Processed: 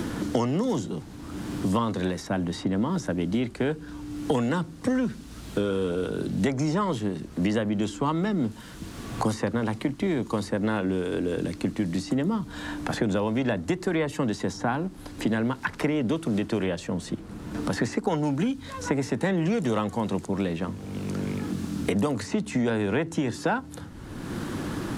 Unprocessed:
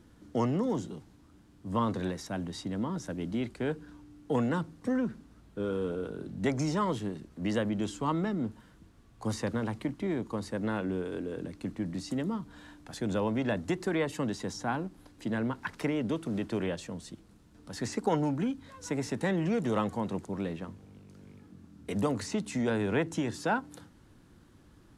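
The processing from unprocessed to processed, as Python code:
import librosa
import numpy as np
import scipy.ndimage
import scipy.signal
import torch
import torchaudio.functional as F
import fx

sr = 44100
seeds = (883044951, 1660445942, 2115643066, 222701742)

y = fx.band_squash(x, sr, depth_pct=100)
y = y * 10.0 ** (5.0 / 20.0)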